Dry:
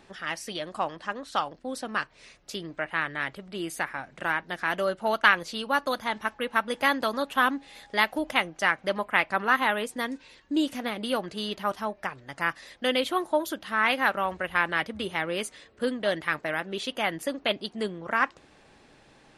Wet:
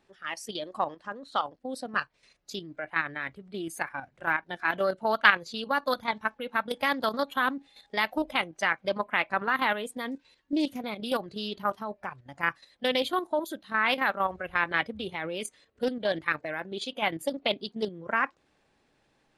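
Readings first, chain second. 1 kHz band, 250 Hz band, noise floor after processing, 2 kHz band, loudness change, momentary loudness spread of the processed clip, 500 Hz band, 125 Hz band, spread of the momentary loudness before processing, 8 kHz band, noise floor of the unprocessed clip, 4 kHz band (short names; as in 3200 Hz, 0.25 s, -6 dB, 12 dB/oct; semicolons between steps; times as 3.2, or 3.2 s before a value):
-1.5 dB, -2.0 dB, -70 dBFS, -1.5 dB, -1.5 dB, 11 LU, -1.5 dB, -2.5 dB, 9 LU, -4.0 dB, -58 dBFS, -2.0 dB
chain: spectral noise reduction 12 dB; level quantiser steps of 9 dB; Doppler distortion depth 0.15 ms; gain +2.5 dB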